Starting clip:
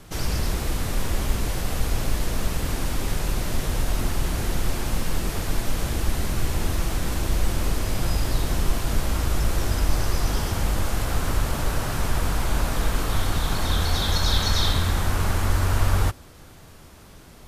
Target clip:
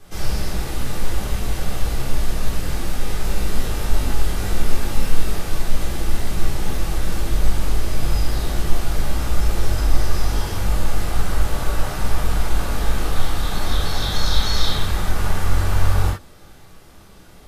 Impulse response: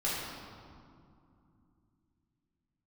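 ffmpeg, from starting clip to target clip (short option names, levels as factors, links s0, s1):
-filter_complex "[0:a]asettb=1/sr,asplit=3[s0][s1][s2];[s0]atrim=end=3.184[s3];[s1]atrim=start=3.18:end=5.34,asetpts=PTS-STARTPTS,afade=t=in:d=0.004:c=qsin,afade=t=out:st=2.156:d=0.004:c=qsin,asplit=2[s4][s5];[s5]adelay=19,volume=0.562[s6];[s4][s6]amix=inputs=2:normalize=0,atrim=end_sample=95256[s7];[s2]atrim=start=5.336[s8];[s3][s7]acrossfade=d=0.004:c1=hsin:c2=qsin[s9];[s9][s8]acrossfade=d=0.004:c1=qsin:c2=hsin[s10];[1:a]atrim=start_sample=2205,atrim=end_sample=3528[s11];[s10][s11]afir=irnorm=-1:irlink=0,volume=0.631"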